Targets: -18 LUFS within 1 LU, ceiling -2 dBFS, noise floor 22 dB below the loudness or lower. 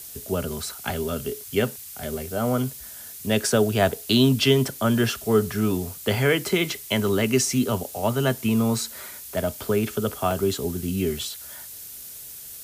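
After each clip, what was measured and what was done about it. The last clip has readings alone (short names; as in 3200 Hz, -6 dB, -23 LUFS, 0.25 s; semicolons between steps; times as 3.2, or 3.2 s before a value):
dropouts 2; longest dropout 1.9 ms; noise floor -40 dBFS; noise floor target -46 dBFS; loudness -24.0 LUFS; peak -6.5 dBFS; loudness target -18.0 LUFS
-> interpolate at 10.31/11.19, 1.9 ms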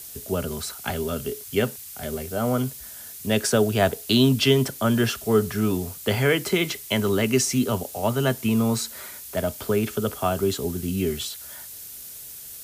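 dropouts 0; noise floor -40 dBFS; noise floor target -46 dBFS
-> denoiser 6 dB, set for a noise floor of -40 dBFS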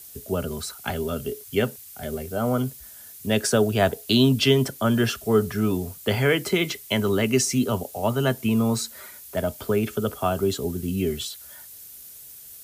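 noise floor -44 dBFS; noise floor target -46 dBFS
-> denoiser 6 dB, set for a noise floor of -44 dBFS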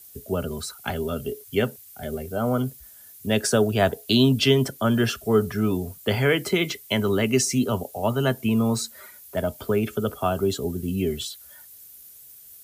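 noise floor -47 dBFS; loudness -24.0 LUFS; peak -7.0 dBFS; loudness target -18.0 LUFS
-> gain +6 dB; limiter -2 dBFS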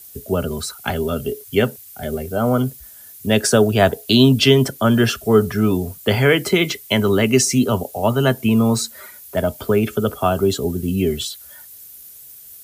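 loudness -18.0 LUFS; peak -2.0 dBFS; noise floor -41 dBFS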